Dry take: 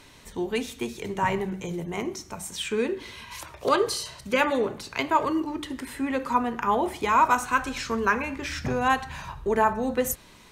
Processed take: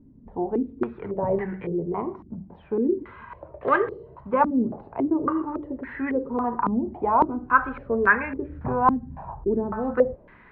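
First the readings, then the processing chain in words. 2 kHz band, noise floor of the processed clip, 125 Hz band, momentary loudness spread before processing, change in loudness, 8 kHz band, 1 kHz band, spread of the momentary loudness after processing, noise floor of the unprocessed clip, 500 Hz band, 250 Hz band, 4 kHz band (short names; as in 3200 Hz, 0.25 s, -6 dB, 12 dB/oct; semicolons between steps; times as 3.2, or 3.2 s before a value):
+1.5 dB, -51 dBFS, +1.0 dB, 11 LU, +1.5 dB, under -40 dB, 0.0 dB, 13 LU, -51 dBFS, +2.0 dB, +4.0 dB, under -20 dB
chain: air absorption 400 m; stepped low-pass 3.6 Hz 240–1800 Hz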